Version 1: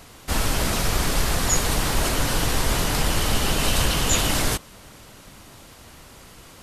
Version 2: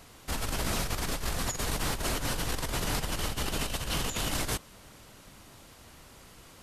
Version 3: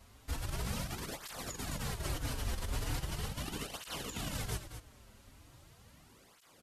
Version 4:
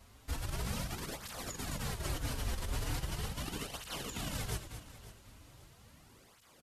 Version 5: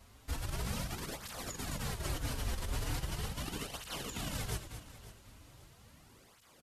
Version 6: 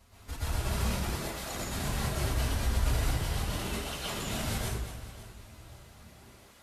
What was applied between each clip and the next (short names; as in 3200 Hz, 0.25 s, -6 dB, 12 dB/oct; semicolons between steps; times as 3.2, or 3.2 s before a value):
negative-ratio compressor -22 dBFS, ratio -0.5; gain -8.5 dB
low shelf 120 Hz +9.5 dB; echo 0.222 s -10.5 dB; tape flanging out of phase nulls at 0.39 Hz, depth 6.9 ms; gain -6.5 dB
feedback echo 0.545 s, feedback 33%, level -16.5 dB
nothing audible
plate-style reverb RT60 0.76 s, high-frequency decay 0.6×, pre-delay 0.105 s, DRR -8 dB; gain -2 dB